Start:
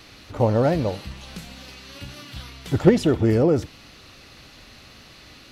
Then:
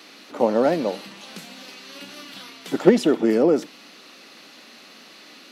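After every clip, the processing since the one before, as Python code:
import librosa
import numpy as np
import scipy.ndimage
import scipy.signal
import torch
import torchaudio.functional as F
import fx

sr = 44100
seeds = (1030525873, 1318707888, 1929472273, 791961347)

y = scipy.signal.sosfilt(scipy.signal.butter(6, 200.0, 'highpass', fs=sr, output='sos'), x)
y = F.gain(torch.from_numpy(y), 1.5).numpy()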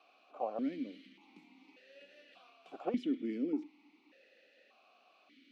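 y = fx.vowel_held(x, sr, hz=1.7)
y = F.gain(torch.from_numpy(y), -7.0).numpy()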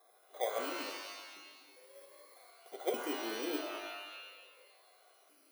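y = fx.bit_reversed(x, sr, seeds[0], block=16)
y = fx.low_shelf_res(y, sr, hz=310.0, db=-10.0, q=3.0)
y = fx.rev_shimmer(y, sr, seeds[1], rt60_s=1.2, semitones=12, shimmer_db=-2, drr_db=4.5)
y = F.gain(torch.from_numpy(y), -2.0).numpy()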